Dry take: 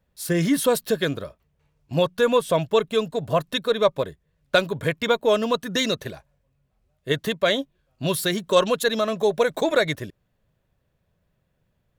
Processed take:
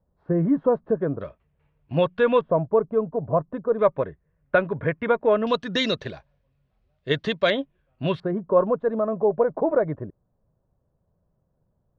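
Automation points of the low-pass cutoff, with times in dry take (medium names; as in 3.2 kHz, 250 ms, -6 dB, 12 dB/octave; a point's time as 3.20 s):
low-pass 24 dB/octave
1.1 kHz
from 1.21 s 2.9 kHz
from 2.41 s 1.1 kHz
from 3.79 s 2 kHz
from 5.47 s 4.7 kHz
from 7.50 s 2.9 kHz
from 8.20 s 1.1 kHz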